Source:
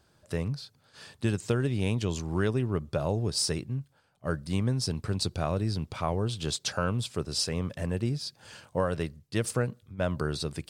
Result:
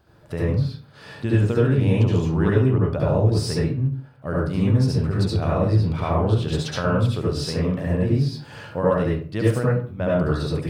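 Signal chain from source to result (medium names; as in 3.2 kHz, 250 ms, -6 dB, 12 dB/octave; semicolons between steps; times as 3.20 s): peaking EQ 7.7 kHz -13 dB 1.8 oct; in parallel at -1 dB: compression, threshold -39 dBFS, peak gain reduction 16 dB; on the sum: reverberation RT60 0.45 s, pre-delay 65 ms, DRR -5 dB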